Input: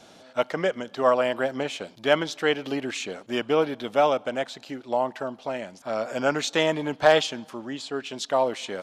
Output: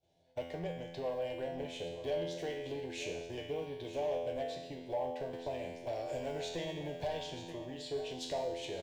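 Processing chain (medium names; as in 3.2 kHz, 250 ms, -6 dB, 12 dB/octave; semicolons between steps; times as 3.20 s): block-companded coder 7-bit; expander -37 dBFS; tone controls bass +15 dB, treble -7 dB; compression 4:1, threshold -30 dBFS, peak gain reduction 16 dB; feedback comb 85 Hz, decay 0.94 s, harmonics all, mix 90%; saturation -39 dBFS, distortion -16 dB; static phaser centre 540 Hz, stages 4; delay 930 ms -13 dB; 5.33–7.53 s: three bands compressed up and down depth 40%; trim +12 dB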